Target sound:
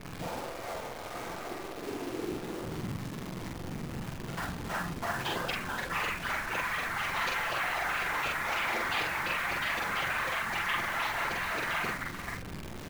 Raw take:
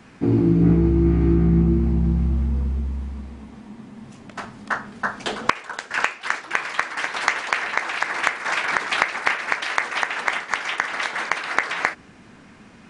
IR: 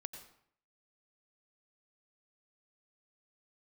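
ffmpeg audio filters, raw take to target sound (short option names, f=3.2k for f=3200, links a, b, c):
-filter_complex "[0:a]equalizer=f=67:t=o:w=0.66:g=6,aeval=exprs='val(0)+0.0141*(sin(2*PI*60*n/s)+sin(2*PI*2*60*n/s)/2+sin(2*PI*3*60*n/s)/3+sin(2*PI*4*60*n/s)/4+sin(2*PI*5*60*n/s)/5)':c=same,aecho=1:1:436:0.178,afftfilt=real='re*lt(hypot(re,im),0.224)':imag='im*lt(hypot(re,im),0.224)':win_size=1024:overlap=0.75,afftfilt=real='hypot(re,im)*cos(PI*b)':imag='0':win_size=1024:overlap=0.75,acrossover=split=2400[a][b];[a]asoftclip=type=tanh:threshold=-27dB[c];[b]lowpass=3.8k[d];[c][d]amix=inputs=2:normalize=0,afftfilt=real='hypot(re,im)*cos(2*PI*random(0))':imag='hypot(re,im)*sin(2*PI*random(1))':win_size=512:overlap=0.75,acrusher=bits=9:dc=4:mix=0:aa=0.000001,bandreject=f=50:t=h:w=6,bandreject=f=100:t=h:w=6,bandreject=f=150:t=h:w=6,bandreject=f=200:t=h:w=6,bandreject=f=250:t=h:w=6,asplit=2[e][f];[f]adelay=45,volume=-2dB[g];[e][g]amix=inputs=2:normalize=0,adynamicequalizer=threshold=0.00282:dfrequency=2100:dqfactor=0.7:tfrequency=2100:tqfactor=0.7:attack=5:release=100:ratio=0.375:range=1.5:mode=cutabove:tftype=highshelf,volume=8dB"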